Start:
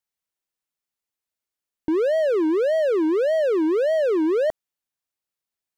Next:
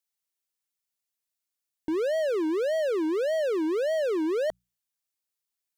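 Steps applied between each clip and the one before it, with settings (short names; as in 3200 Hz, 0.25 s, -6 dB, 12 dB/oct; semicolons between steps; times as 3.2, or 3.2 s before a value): high shelf 2700 Hz +9.5 dB; notches 60/120/180 Hz; gain -6.5 dB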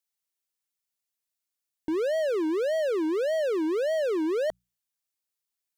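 nothing audible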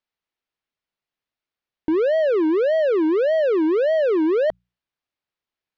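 air absorption 270 m; gain +8.5 dB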